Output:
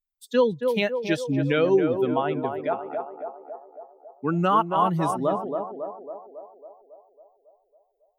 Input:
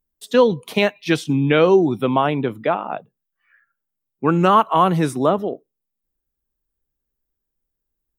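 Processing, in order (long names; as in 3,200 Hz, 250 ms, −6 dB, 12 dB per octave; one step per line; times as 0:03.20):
spectral dynamics exaggerated over time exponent 1.5
feedback echo with a band-pass in the loop 275 ms, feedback 64%, band-pass 600 Hz, level −4 dB
level −5 dB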